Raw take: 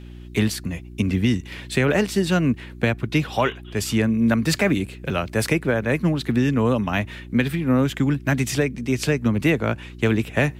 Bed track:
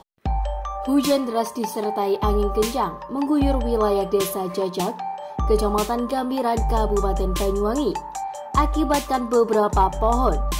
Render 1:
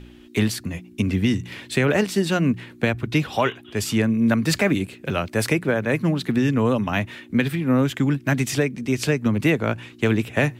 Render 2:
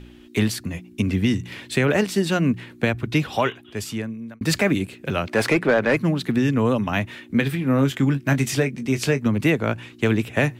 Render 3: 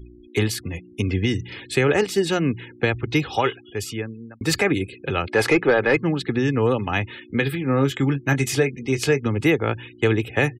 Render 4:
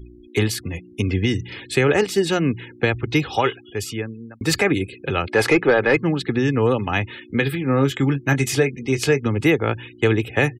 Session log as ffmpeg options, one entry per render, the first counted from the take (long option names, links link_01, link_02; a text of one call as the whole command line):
ffmpeg -i in.wav -af "bandreject=frequency=60:width_type=h:width=4,bandreject=frequency=120:width_type=h:width=4,bandreject=frequency=180:width_type=h:width=4" out.wav
ffmpeg -i in.wav -filter_complex "[0:a]asettb=1/sr,asplit=3[link_01][link_02][link_03];[link_01]atrim=end=5.274[link_04];[link_02]atrim=start=5.27:end=5.97,asetpts=PTS-STARTPTS,afade=type=in:duration=0.004:curve=qsin,afade=type=out:start_time=0.696:duration=0.004:curve=qsin,asplit=2[link_05][link_06];[link_06]highpass=frequency=720:poles=1,volume=18dB,asoftclip=type=tanh:threshold=-7.5dB[link_07];[link_05][link_07]amix=inputs=2:normalize=0,lowpass=frequency=1600:poles=1,volume=-6dB[link_08];[link_03]atrim=start=5.966[link_09];[link_04][link_08]acrossfade=duration=0.004:curve1=hsin:curve2=qsin[link_10];[link_10][link_09]acrossfade=duration=0.004:curve1=qsin:curve2=hsin,asettb=1/sr,asplit=3[link_11][link_12][link_13];[link_11]atrim=end=7.344[link_14];[link_12]atrim=start=7.34:end=9.23,asetpts=PTS-STARTPTS,afade=type=in:duration=0.004:curve=qsin,afade=type=out:start_time=1.886:duration=0.004:curve=qsin,asplit=2[link_15][link_16];[link_16]adelay=22,volume=-10.5dB[link_17];[link_15][link_17]amix=inputs=2:normalize=0,atrim=end_sample=83349[link_18];[link_13]atrim=start=9.226[link_19];[link_14][link_18]acrossfade=duration=0.004:curve1=hsin:curve2=qsin[link_20];[link_20][link_19]acrossfade=duration=0.004:curve1=qsin:curve2=hsin,asplit=2[link_21][link_22];[link_21]atrim=end=4.41,asetpts=PTS-STARTPTS,afade=type=out:start_time=3.37:duration=1.04[link_23];[link_22]atrim=start=4.41,asetpts=PTS-STARTPTS,afade=type=in:duration=0.004:curve=hsin[link_24];[link_23][link_24]concat=n=2:v=0:a=1" out.wav
ffmpeg -i in.wav -af "afftfilt=real='re*gte(hypot(re,im),0.00794)':imag='im*gte(hypot(re,im),0.00794)':win_size=1024:overlap=0.75,aecho=1:1:2.4:0.52" out.wav
ffmpeg -i in.wav -af "volume=1.5dB" out.wav